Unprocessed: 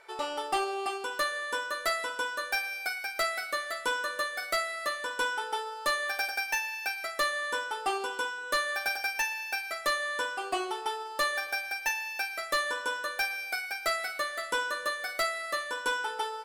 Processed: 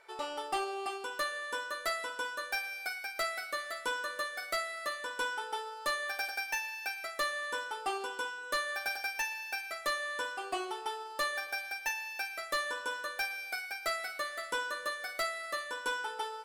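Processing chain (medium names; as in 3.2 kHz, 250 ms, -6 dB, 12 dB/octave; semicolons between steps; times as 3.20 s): feedback echo behind a high-pass 391 ms, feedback 35%, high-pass 2.9 kHz, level -21 dB; trim -4.5 dB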